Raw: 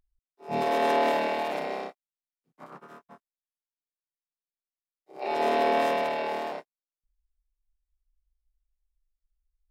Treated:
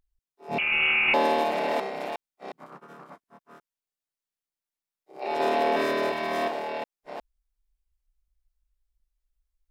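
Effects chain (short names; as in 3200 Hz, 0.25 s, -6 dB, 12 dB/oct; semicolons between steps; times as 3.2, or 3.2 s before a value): reverse delay 0.36 s, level -2 dB; 0.58–1.14 inverted band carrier 3100 Hz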